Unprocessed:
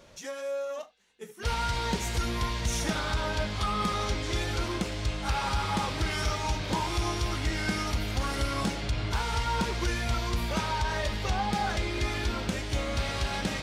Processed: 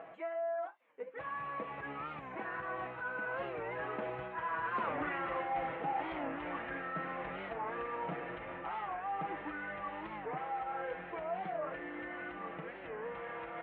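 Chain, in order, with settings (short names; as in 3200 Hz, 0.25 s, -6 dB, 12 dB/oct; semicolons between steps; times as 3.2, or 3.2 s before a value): Doppler pass-by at 4.97, 59 m/s, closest 11 m; in parallel at -2 dB: upward compressor, threshold -46 dBFS; on the sum: HPF 600 Hz 12 dB/oct; comb 6.1 ms, depth 63%; reverse; compressor 5:1, threshold -50 dBFS, peak gain reduction 22 dB; reverse; inverse Chebyshev low-pass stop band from 4600 Hz, stop band 40 dB; tilt -3.5 dB/oct; record warp 45 rpm, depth 160 cents; gain +15 dB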